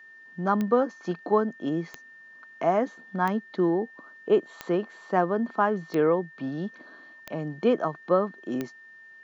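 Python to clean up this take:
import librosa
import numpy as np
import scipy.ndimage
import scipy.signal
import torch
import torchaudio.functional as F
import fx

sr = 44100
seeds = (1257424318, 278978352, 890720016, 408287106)

y = fx.fix_declick_ar(x, sr, threshold=10.0)
y = fx.notch(y, sr, hz=1800.0, q=30.0)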